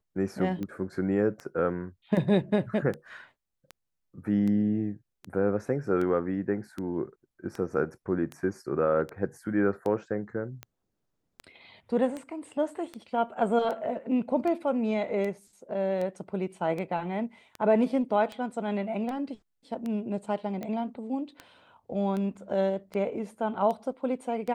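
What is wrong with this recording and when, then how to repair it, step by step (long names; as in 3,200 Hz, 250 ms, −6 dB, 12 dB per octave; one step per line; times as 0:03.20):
scratch tick 78 rpm −23 dBFS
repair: click removal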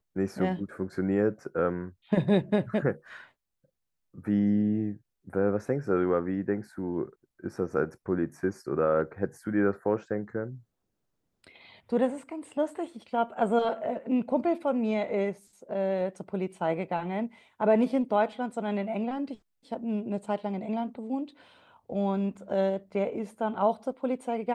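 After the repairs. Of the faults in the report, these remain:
none of them is left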